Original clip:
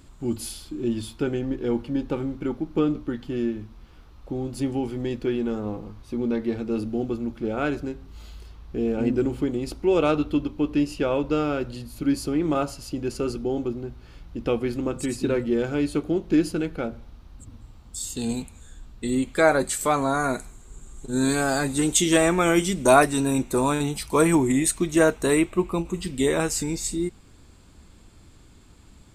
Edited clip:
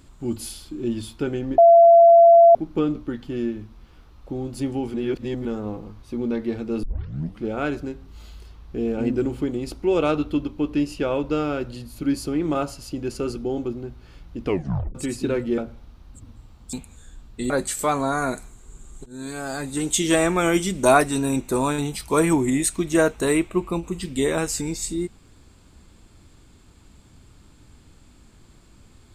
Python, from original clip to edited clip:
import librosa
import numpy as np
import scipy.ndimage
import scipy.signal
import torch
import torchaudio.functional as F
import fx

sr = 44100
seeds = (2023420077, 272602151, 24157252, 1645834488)

y = fx.edit(x, sr, fx.bleep(start_s=1.58, length_s=0.97, hz=678.0, db=-7.5),
    fx.reverse_span(start_s=4.94, length_s=0.51),
    fx.tape_start(start_s=6.83, length_s=0.59),
    fx.tape_stop(start_s=14.45, length_s=0.5),
    fx.cut(start_s=15.58, length_s=1.25),
    fx.cut(start_s=17.98, length_s=0.39),
    fx.cut(start_s=19.14, length_s=0.38),
    fx.fade_in_from(start_s=21.08, length_s=1.1, floor_db=-18.5), tone=tone)